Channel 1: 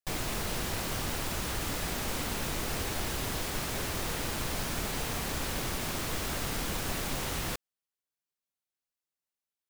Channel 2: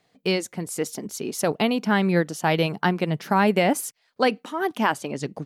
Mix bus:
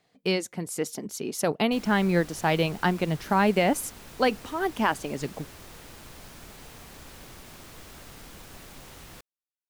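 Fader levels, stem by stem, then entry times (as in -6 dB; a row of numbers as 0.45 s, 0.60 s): -12.5 dB, -2.5 dB; 1.65 s, 0.00 s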